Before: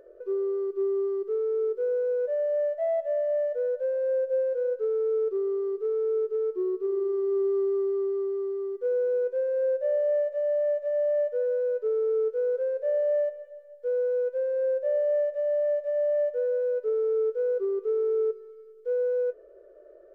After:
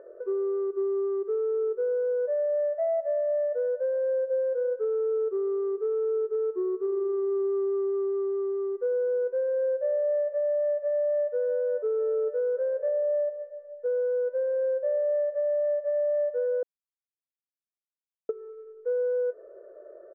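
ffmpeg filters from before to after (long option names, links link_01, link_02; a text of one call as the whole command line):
ffmpeg -i in.wav -filter_complex "[0:a]asplit=2[link_01][link_02];[link_02]afade=type=in:start_time=10.79:duration=0.01,afade=type=out:start_time=11.25:duration=0.01,aecho=0:1:570|1140|1710|2280|2850|3420|3990:0.188365|0.122437|0.0795842|0.0517297|0.0336243|0.0218558|0.0142063[link_03];[link_01][link_03]amix=inputs=2:normalize=0,asettb=1/sr,asplit=3[link_04][link_05][link_06];[link_04]atrim=end=12.884[link_07];[link_05]atrim=start=12.88:end=13.86,asetpts=PTS-STARTPTS,afade=type=in:duration=0.004:curve=qsin,afade=type=out:start_time=0.976:duration=0.004:curve=qsin,lowpass=frequency=1300:poles=1[link_08];[link_06]atrim=start=13.856[link_09];[link_07][link_08]acrossfade=duration=0.004:curve1=hsin:curve2=qsin[link_10];[link_10][link_09]acrossfade=duration=0.004:curve1=qsin:curve2=hsin,asplit=3[link_11][link_12][link_13];[link_11]atrim=end=16.63,asetpts=PTS-STARTPTS,afade=type=out:start_time=16.626:duration=0.004:curve=hsin[link_14];[link_12]atrim=start=16.63:end=18.29,asetpts=PTS-STARTPTS,volume=0[link_15];[link_13]atrim=start=18.29,asetpts=PTS-STARTPTS,afade=type=in:duration=0.004:curve=hsin[link_16];[link_14][link_15][link_16]concat=n=3:v=0:a=1,lowpass=frequency=1500:width=0.5412,lowpass=frequency=1500:width=1.3066,aemphasis=mode=production:type=riaa,acompressor=threshold=-34dB:ratio=2.5,volume=7dB" out.wav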